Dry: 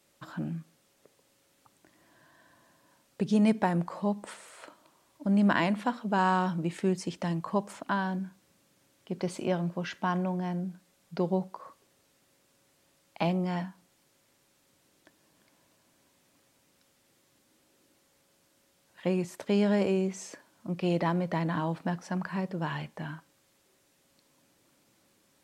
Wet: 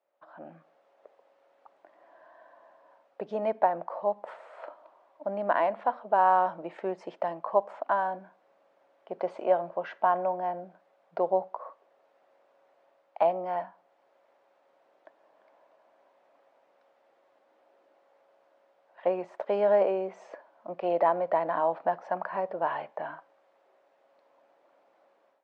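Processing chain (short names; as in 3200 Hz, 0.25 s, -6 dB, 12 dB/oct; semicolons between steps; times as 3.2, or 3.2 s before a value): AGC gain up to 15 dB; ladder band-pass 750 Hz, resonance 50%; gain +2.5 dB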